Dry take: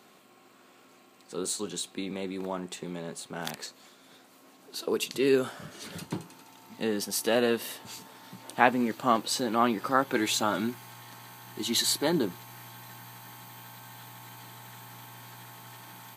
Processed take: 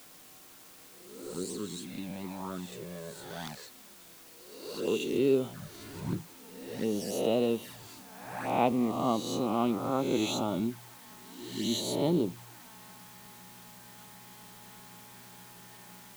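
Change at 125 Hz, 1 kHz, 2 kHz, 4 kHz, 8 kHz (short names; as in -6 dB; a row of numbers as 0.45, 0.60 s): +2.0, -5.0, -11.0, -6.5, -8.0 dB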